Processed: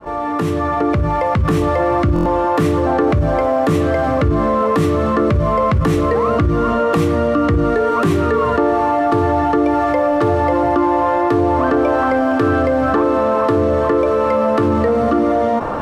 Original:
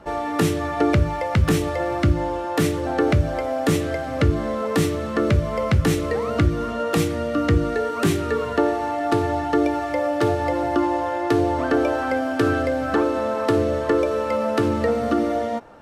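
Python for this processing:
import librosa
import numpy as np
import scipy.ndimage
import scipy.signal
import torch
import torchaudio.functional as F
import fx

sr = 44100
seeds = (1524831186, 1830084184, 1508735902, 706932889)

p1 = fx.fade_in_head(x, sr, length_s=1.95)
p2 = fx.peak_eq(p1, sr, hz=1100.0, db=11.5, octaves=0.21)
p3 = 10.0 ** (-24.0 / 20.0) * np.tanh(p2 / 10.0 ** (-24.0 / 20.0))
p4 = p2 + (p3 * 10.0 ** (-5.0 / 20.0))
p5 = fx.high_shelf(p4, sr, hz=2500.0, db=-10.5)
p6 = fx.buffer_glitch(p5, sr, at_s=(2.14,), block=1024, repeats=4)
y = fx.env_flatten(p6, sr, amount_pct=70)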